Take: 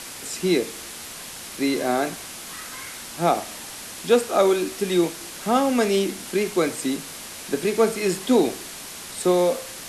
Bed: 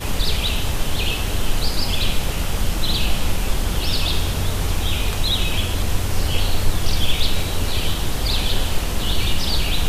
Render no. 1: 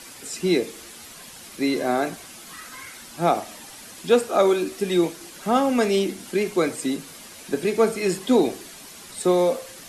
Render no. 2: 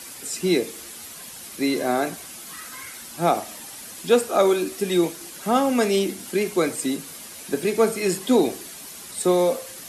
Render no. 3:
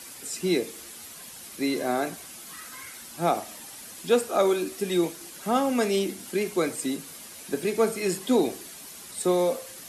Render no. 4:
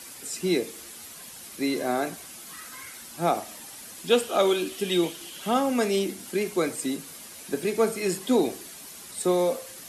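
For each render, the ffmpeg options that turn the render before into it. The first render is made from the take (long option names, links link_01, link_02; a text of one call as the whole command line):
ffmpeg -i in.wav -af "afftdn=noise_reduction=8:noise_floor=-38" out.wav
ffmpeg -i in.wav -af "highpass=41,highshelf=frequency=10000:gain=10.5" out.wav
ffmpeg -i in.wav -af "volume=-4dB" out.wav
ffmpeg -i in.wav -filter_complex "[0:a]asettb=1/sr,asplit=3[link_01][link_02][link_03];[link_01]atrim=end=4.104[link_04];[link_02]atrim=start=4.1:end=5.54,asetpts=PTS-STARTPTS,afade=type=in:duration=0.004:curve=qsin,afade=type=out:start_time=1.436:duration=0.004:curve=qsin,equalizer=frequency=3100:width=3.3:gain=13[link_05];[link_03]atrim=start=5.536[link_06];[link_04][link_05]acrossfade=duration=0.004:curve1=hsin:curve2=qsin[link_07];[link_07][link_06]acrossfade=duration=0.004:curve1=qsin:curve2=hsin" out.wav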